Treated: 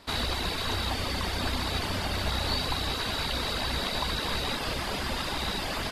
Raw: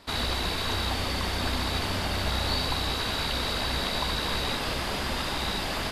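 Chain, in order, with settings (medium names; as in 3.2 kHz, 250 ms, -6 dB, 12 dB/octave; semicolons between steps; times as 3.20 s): reverb removal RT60 0.53 s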